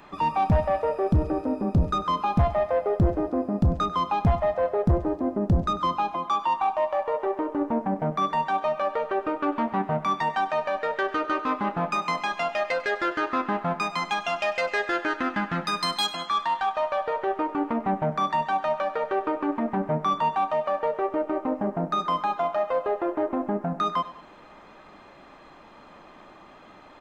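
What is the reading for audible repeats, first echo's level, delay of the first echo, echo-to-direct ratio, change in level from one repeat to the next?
2, -16.5 dB, 97 ms, -15.5 dB, -7.5 dB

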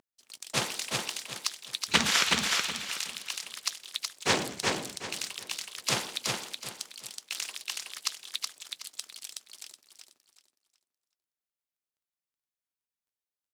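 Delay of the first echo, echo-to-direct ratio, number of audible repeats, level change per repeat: 372 ms, -2.5 dB, 3, -11.0 dB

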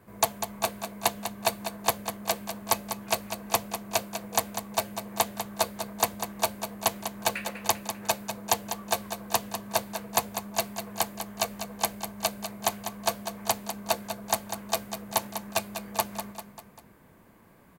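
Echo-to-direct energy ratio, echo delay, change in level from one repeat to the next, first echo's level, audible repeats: -7.5 dB, 197 ms, -5.5 dB, -9.0 dB, 4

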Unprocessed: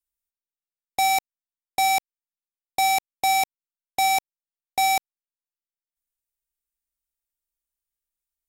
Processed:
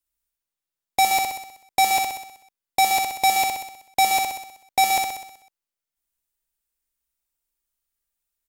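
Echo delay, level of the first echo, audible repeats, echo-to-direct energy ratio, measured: 63 ms, -4.0 dB, 7, -2.5 dB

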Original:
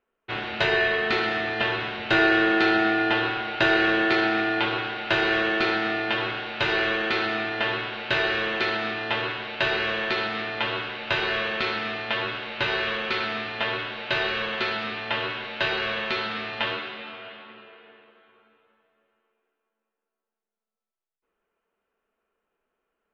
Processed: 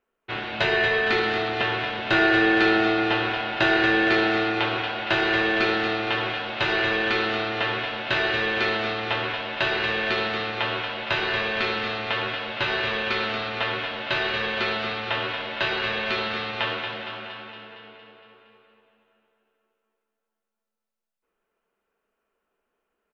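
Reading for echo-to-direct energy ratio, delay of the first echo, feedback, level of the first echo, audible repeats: -5.0 dB, 231 ms, 59%, -7.0 dB, 7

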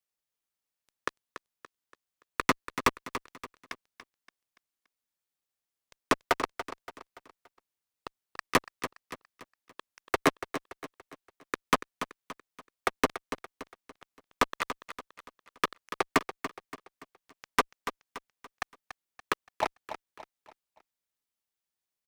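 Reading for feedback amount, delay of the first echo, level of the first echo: 41%, 286 ms, -11.0 dB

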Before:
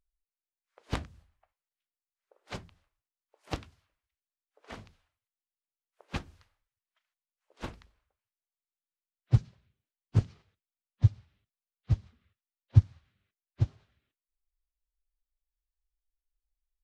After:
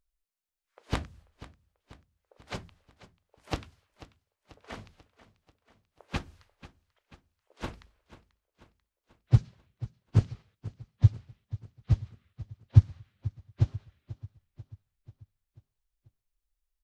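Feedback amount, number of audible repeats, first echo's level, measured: 56%, 4, -17.0 dB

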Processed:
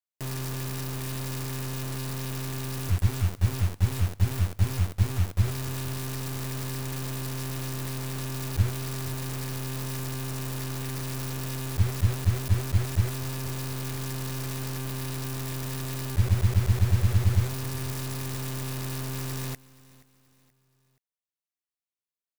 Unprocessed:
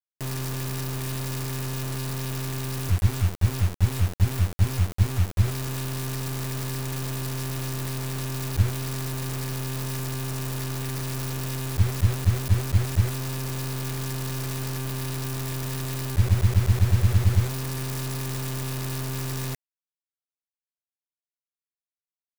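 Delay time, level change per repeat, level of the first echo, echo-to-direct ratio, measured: 477 ms, -7.5 dB, -21.5 dB, -20.5 dB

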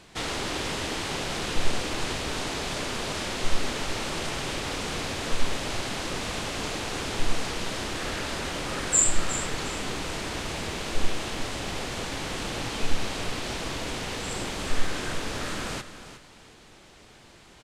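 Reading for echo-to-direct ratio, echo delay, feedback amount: -12.0 dB, 361 ms, 27%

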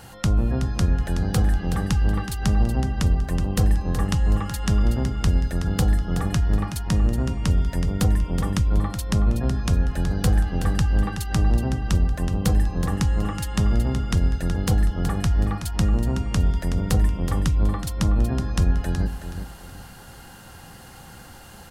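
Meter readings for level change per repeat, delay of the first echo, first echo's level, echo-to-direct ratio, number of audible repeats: -10.0 dB, 373 ms, -9.0 dB, -8.5 dB, 3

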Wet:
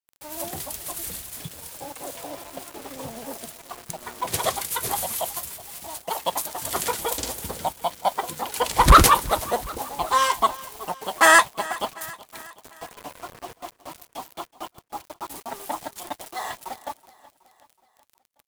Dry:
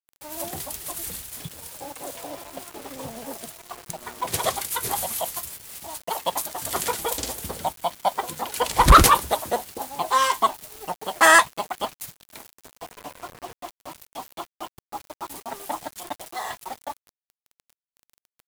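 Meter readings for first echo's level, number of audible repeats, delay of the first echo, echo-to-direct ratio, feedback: -19.5 dB, 3, 373 ms, -18.0 dB, 54%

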